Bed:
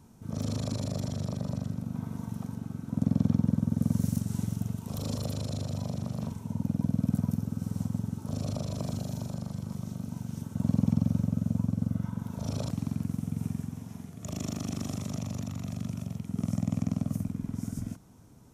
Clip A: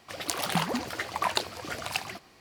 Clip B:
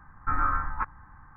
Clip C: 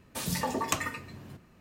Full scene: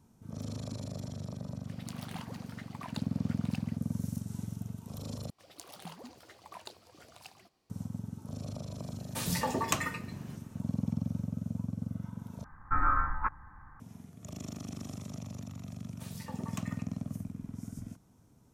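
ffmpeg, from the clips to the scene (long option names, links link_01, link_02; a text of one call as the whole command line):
ffmpeg -i bed.wav -i cue0.wav -i cue1.wav -i cue2.wav -filter_complex "[1:a]asplit=2[link_01][link_02];[3:a]asplit=2[link_03][link_04];[0:a]volume=-7.5dB[link_05];[link_02]equalizer=frequency=1800:width_type=o:width=1.4:gain=-7[link_06];[link_05]asplit=3[link_07][link_08][link_09];[link_07]atrim=end=5.304[link_10];[link_06]atrim=end=2.4,asetpts=PTS-STARTPTS,volume=-17.5dB[link_11];[link_08]atrim=start=7.696:end=12.444[link_12];[2:a]atrim=end=1.36,asetpts=PTS-STARTPTS,volume=-1.5dB[link_13];[link_09]atrim=start=13.796[link_14];[link_01]atrim=end=2.4,asetpts=PTS-STARTPTS,volume=-17.5dB,afade=type=in:duration=0.004:curve=hsin,afade=type=out:start_time=2.396:duration=0.004:curve=hsin,adelay=1590[link_15];[link_03]atrim=end=1.6,asetpts=PTS-STARTPTS,volume=-1dB,afade=type=in:duration=0.004:curve=hsin,afade=type=out:start_time=1.596:duration=0.004:curve=hsin,adelay=9000[link_16];[link_04]atrim=end=1.6,asetpts=PTS-STARTPTS,volume=-15.5dB,afade=type=in:duration=0.004:curve=hsin,afade=type=out:start_time=1.596:duration=0.004:curve=hsin,adelay=15850[link_17];[link_10][link_11]acrossfade=duration=0.004:curve1=hsin:curve2=hsin[link_18];[link_18][link_12]acrossfade=duration=0.004:curve1=hsin:curve2=hsin[link_19];[link_19][link_13]acrossfade=duration=0.004:curve1=hsin:curve2=hsin[link_20];[link_20][link_14]acrossfade=duration=0.004:curve1=hsin:curve2=hsin[link_21];[link_21][link_15][link_16][link_17]amix=inputs=4:normalize=0" out.wav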